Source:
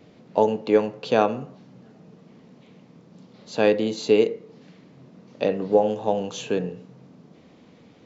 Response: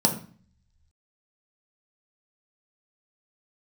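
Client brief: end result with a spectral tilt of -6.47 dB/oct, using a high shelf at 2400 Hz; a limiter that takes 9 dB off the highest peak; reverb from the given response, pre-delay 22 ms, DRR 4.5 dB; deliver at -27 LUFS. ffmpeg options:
-filter_complex "[0:a]highshelf=f=2.4k:g=-7.5,alimiter=limit=-14dB:level=0:latency=1,asplit=2[a][b];[1:a]atrim=start_sample=2205,adelay=22[c];[b][c]afir=irnorm=-1:irlink=0,volume=-17.5dB[d];[a][d]amix=inputs=2:normalize=0,volume=-2.5dB"

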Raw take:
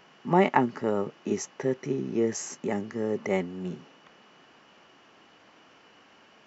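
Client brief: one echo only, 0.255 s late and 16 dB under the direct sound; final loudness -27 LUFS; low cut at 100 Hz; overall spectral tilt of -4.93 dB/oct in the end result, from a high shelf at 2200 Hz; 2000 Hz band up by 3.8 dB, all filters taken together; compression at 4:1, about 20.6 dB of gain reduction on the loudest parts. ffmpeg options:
-af "highpass=100,equalizer=f=2k:t=o:g=6.5,highshelf=f=2.2k:g=-4.5,acompressor=threshold=-43dB:ratio=4,aecho=1:1:255:0.158,volume=19.5dB"

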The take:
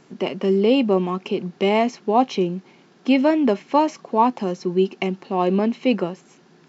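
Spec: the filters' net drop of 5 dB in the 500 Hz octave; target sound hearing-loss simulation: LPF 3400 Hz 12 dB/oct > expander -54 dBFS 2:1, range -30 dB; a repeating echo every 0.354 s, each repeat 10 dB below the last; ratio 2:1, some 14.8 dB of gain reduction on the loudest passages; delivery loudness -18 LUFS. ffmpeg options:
-af "equalizer=f=500:t=o:g=-7,acompressor=threshold=-42dB:ratio=2,lowpass=3.4k,aecho=1:1:354|708|1062|1416:0.316|0.101|0.0324|0.0104,agate=range=-30dB:threshold=-54dB:ratio=2,volume=18dB"

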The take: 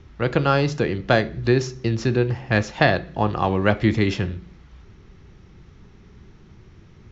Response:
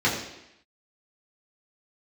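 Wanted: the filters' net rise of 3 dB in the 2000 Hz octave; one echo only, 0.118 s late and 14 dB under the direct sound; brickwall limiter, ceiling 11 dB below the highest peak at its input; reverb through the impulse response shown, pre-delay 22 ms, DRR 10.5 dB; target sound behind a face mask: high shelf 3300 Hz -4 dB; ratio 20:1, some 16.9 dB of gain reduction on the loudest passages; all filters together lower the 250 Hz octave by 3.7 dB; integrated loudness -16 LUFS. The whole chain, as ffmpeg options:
-filter_complex "[0:a]equalizer=f=250:t=o:g=-5.5,equalizer=f=2k:t=o:g=5,acompressor=threshold=-28dB:ratio=20,alimiter=level_in=1dB:limit=-24dB:level=0:latency=1,volume=-1dB,aecho=1:1:118:0.2,asplit=2[a][b];[1:a]atrim=start_sample=2205,adelay=22[c];[b][c]afir=irnorm=-1:irlink=0,volume=-26dB[d];[a][d]amix=inputs=2:normalize=0,highshelf=f=3.3k:g=-4,volume=20.5dB"

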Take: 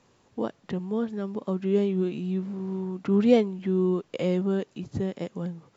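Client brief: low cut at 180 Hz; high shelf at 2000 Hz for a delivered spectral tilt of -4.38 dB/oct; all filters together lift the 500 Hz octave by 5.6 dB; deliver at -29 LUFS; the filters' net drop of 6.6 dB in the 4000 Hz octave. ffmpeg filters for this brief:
-af "highpass=180,equalizer=f=500:t=o:g=7.5,highshelf=f=2k:g=-5.5,equalizer=f=4k:t=o:g=-4,volume=-4.5dB"

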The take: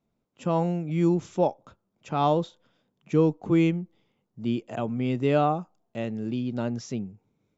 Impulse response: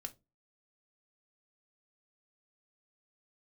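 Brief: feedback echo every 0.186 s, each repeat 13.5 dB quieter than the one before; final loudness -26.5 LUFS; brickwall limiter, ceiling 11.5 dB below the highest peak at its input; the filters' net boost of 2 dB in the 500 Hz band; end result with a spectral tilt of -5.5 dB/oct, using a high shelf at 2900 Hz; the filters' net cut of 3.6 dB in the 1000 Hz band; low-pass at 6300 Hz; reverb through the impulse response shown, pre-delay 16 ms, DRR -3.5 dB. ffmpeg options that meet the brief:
-filter_complex "[0:a]lowpass=6.3k,equalizer=f=500:t=o:g=4.5,equalizer=f=1k:t=o:g=-7.5,highshelf=f=2.9k:g=-4,alimiter=limit=-20.5dB:level=0:latency=1,aecho=1:1:186|372:0.211|0.0444,asplit=2[a][b];[1:a]atrim=start_sample=2205,adelay=16[c];[b][c]afir=irnorm=-1:irlink=0,volume=7dB[d];[a][d]amix=inputs=2:normalize=0,volume=-0.5dB"

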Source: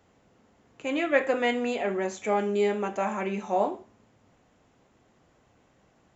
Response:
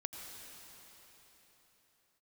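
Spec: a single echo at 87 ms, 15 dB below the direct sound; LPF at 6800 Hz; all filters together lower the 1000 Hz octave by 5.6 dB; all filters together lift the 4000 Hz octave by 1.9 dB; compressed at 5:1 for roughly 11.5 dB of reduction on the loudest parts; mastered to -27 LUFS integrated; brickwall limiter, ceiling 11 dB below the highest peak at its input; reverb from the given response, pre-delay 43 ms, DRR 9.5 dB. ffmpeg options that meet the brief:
-filter_complex "[0:a]lowpass=6.8k,equalizer=f=1k:t=o:g=-8.5,equalizer=f=4k:t=o:g=4,acompressor=threshold=-31dB:ratio=5,alimiter=level_in=8dB:limit=-24dB:level=0:latency=1,volume=-8dB,aecho=1:1:87:0.178,asplit=2[a][b];[1:a]atrim=start_sample=2205,adelay=43[c];[b][c]afir=irnorm=-1:irlink=0,volume=-8.5dB[d];[a][d]amix=inputs=2:normalize=0,volume=13.5dB"

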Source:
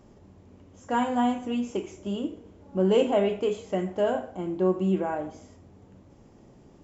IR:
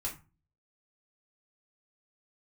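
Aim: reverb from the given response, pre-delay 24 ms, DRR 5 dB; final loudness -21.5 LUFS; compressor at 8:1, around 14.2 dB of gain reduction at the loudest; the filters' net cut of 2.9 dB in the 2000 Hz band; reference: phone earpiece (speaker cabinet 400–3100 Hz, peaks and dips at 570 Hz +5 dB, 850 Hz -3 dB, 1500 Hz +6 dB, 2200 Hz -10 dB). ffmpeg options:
-filter_complex "[0:a]equalizer=f=2k:t=o:g=-7,acompressor=threshold=-33dB:ratio=8,asplit=2[a][b];[1:a]atrim=start_sample=2205,adelay=24[c];[b][c]afir=irnorm=-1:irlink=0,volume=-6.5dB[d];[a][d]amix=inputs=2:normalize=0,highpass=400,equalizer=f=570:t=q:w=4:g=5,equalizer=f=850:t=q:w=4:g=-3,equalizer=f=1.5k:t=q:w=4:g=6,equalizer=f=2.2k:t=q:w=4:g=-10,lowpass=f=3.1k:w=0.5412,lowpass=f=3.1k:w=1.3066,volume=17.5dB"

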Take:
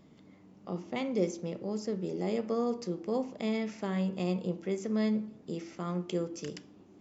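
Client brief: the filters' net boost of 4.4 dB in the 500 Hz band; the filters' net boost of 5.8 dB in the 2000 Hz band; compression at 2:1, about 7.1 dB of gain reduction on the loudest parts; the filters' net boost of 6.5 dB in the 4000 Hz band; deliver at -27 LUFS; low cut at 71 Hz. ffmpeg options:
-af "highpass=71,equalizer=f=500:t=o:g=5,equalizer=f=2k:t=o:g=4.5,equalizer=f=4k:t=o:g=7,acompressor=threshold=-34dB:ratio=2,volume=9dB"

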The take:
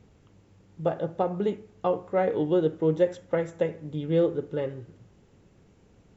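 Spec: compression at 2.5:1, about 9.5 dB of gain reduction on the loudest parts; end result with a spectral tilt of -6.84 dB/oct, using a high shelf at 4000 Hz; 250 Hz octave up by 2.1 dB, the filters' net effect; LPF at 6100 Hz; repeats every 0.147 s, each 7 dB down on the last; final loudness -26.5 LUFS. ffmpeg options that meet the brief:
-af "lowpass=6.1k,equalizer=f=250:t=o:g=3.5,highshelf=f=4k:g=-8,acompressor=threshold=-32dB:ratio=2.5,aecho=1:1:147|294|441|588|735:0.447|0.201|0.0905|0.0407|0.0183,volume=7dB"

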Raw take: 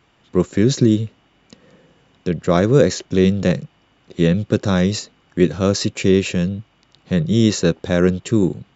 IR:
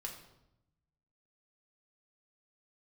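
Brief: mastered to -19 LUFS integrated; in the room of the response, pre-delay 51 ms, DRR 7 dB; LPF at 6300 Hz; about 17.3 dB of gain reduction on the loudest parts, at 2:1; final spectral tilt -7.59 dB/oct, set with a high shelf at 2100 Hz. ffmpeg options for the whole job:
-filter_complex "[0:a]lowpass=6.3k,highshelf=f=2.1k:g=-4,acompressor=threshold=-42dB:ratio=2,asplit=2[a][b];[1:a]atrim=start_sample=2205,adelay=51[c];[b][c]afir=irnorm=-1:irlink=0,volume=-5dB[d];[a][d]amix=inputs=2:normalize=0,volume=14.5dB"

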